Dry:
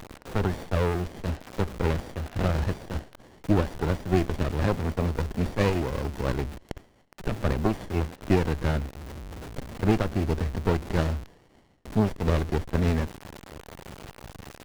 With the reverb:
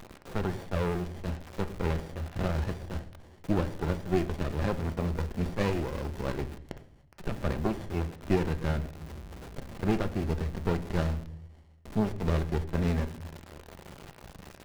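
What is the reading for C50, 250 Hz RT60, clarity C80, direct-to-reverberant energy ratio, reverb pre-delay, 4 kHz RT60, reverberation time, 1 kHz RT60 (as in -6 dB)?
16.0 dB, 0.85 s, 19.0 dB, 10.0 dB, 5 ms, 0.45 s, 0.65 s, 0.55 s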